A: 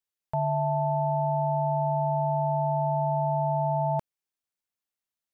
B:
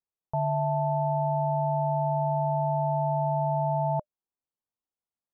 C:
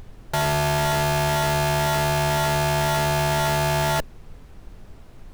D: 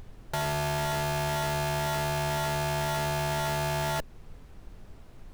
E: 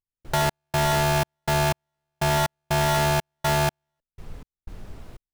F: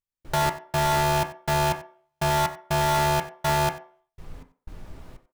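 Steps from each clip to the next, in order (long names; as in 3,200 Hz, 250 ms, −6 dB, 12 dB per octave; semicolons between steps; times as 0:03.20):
low-pass filter 1,100 Hz 24 dB per octave; notch filter 600 Hz, Q 18
comparator with hysteresis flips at −42.5 dBFS; background noise brown −47 dBFS; level +6.5 dB
downward compressor 1.5 to 1, threshold −30 dBFS, peak gain reduction 3.5 dB; level −4.5 dB
gate pattern ".x.xx.x." 61 BPM −60 dB; level +8 dB
single-tap delay 92 ms −19 dB; on a send at −5 dB: convolution reverb RT60 0.45 s, pre-delay 3 ms; on the sum: level −2 dB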